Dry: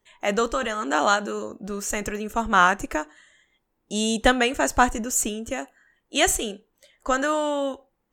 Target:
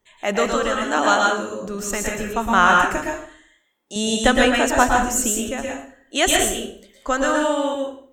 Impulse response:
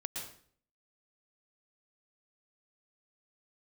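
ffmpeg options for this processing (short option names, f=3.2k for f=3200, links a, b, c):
-filter_complex "[0:a]asettb=1/sr,asplit=3[a][b][c];[a]atrim=end=2.964[d];[b]atrim=start=2.96:end=3.96,asetpts=PTS-STARTPTS,afade=t=in:d=0.004:c=qsin,afade=t=out:st=0.996:d=0.004:c=qsin,highpass=f=590:p=1[e];[c]atrim=start=3.956[f];[d][e]acrossfade=d=0.004:c1=hsin:c2=qsin[g];[g][f]acrossfade=d=0.004:c1=qsin:c2=hsin[h];[1:a]atrim=start_sample=2205[i];[h][i]afir=irnorm=-1:irlink=0,volume=4dB"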